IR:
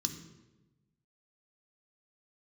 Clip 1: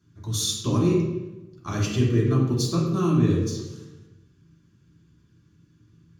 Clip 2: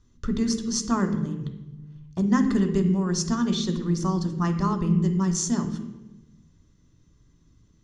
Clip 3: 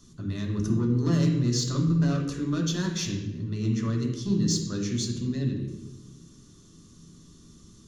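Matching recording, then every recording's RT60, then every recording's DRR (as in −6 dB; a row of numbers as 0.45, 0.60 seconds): 2; 1.1, 1.1, 1.1 seconds; −5.5, 5.0, 0.0 decibels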